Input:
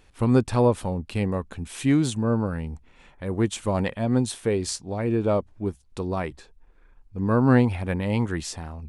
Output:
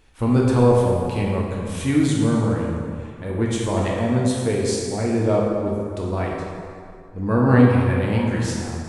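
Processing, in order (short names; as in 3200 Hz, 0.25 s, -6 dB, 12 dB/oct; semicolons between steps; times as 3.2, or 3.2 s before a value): plate-style reverb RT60 2.3 s, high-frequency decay 0.65×, DRR -3.5 dB; ending taper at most 160 dB/s; gain -1 dB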